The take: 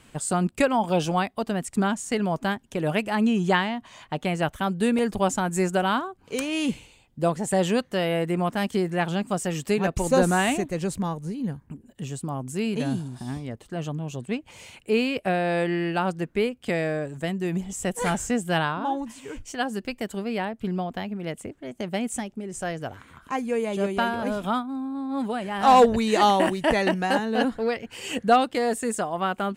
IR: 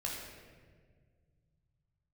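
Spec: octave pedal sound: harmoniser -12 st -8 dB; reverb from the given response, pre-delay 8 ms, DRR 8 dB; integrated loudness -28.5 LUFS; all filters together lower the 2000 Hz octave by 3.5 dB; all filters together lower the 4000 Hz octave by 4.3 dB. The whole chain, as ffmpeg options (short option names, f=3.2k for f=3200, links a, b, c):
-filter_complex "[0:a]equalizer=f=2k:t=o:g=-3.5,equalizer=f=4k:t=o:g=-4.5,asplit=2[a][b];[1:a]atrim=start_sample=2205,adelay=8[c];[b][c]afir=irnorm=-1:irlink=0,volume=-10dB[d];[a][d]amix=inputs=2:normalize=0,asplit=2[e][f];[f]asetrate=22050,aresample=44100,atempo=2,volume=-8dB[g];[e][g]amix=inputs=2:normalize=0,volume=-3.5dB"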